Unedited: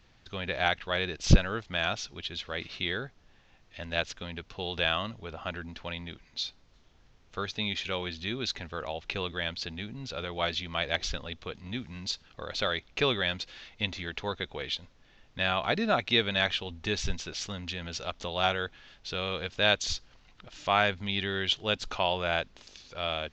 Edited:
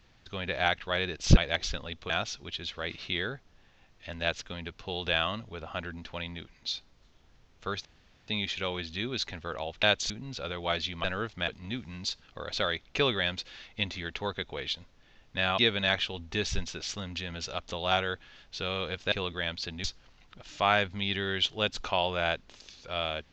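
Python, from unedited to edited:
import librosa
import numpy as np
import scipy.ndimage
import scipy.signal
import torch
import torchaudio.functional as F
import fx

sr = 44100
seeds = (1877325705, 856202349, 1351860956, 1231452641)

y = fx.edit(x, sr, fx.swap(start_s=1.37, length_s=0.44, other_s=10.77, other_length_s=0.73),
    fx.insert_room_tone(at_s=7.56, length_s=0.43),
    fx.swap(start_s=9.11, length_s=0.72, other_s=19.64, other_length_s=0.27),
    fx.cut(start_s=15.6, length_s=0.5), tone=tone)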